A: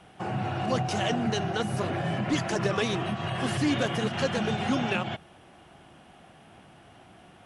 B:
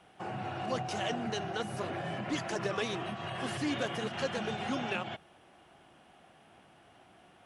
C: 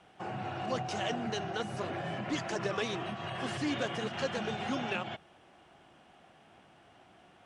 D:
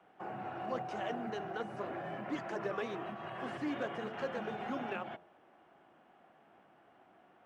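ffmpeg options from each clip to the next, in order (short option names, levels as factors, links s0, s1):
-af "bass=f=250:g=-6,treble=f=4000:g=-1,volume=0.531"
-af "lowpass=f=8800:w=0.5412,lowpass=f=8800:w=1.3066"
-filter_complex "[0:a]acrusher=bits=8:mode=log:mix=0:aa=0.000001,acrossover=split=180 2100:gain=0.224 1 0.178[s0][s1][s2];[s0][s1][s2]amix=inputs=3:normalize=0,bandreject=f=88.22:t=h:w=4,bandreject=f=176.44:t=h:w=4,bandreject=f=264.66:t=h:w=4,bandreject=f=352.88:t=h:w=4,bandreject=f=441.1:t=h:w=4,bandreject=f=529.32:t=h:w=4,bandreject=f=617.54:t=h:w=4,bandreject=f=705.76:t=h:w=4,bandreject=f=793.98:t=h:w=4,bandreject=f=882.2:t=h:w=4,bandreject=f=970.42:t=h:w=4,volume=0.75"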